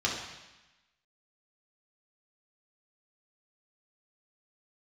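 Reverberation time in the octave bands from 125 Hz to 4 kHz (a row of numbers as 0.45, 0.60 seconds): 1.1, 1.1, 0.95, 1.1, 1.2, 1.1 seconds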